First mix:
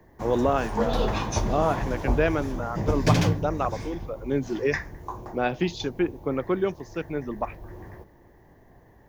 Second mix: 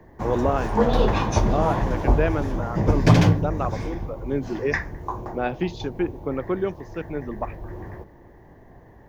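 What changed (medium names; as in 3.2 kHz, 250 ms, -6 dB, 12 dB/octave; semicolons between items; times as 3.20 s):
background +6.0 dB; master: add treble shelf 3.6 kHz -9 dB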